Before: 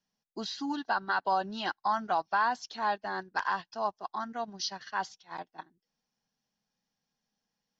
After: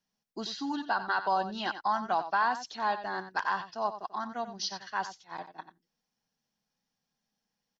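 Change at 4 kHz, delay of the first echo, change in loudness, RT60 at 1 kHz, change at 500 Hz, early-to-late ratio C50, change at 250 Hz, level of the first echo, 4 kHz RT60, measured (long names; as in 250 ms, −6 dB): +0.5 dB, 90 ms, +0.5 dB, no reverb audible, +0.5 dB, no reverb audible, +0.5 dB, −11.5 dB, no reverb audible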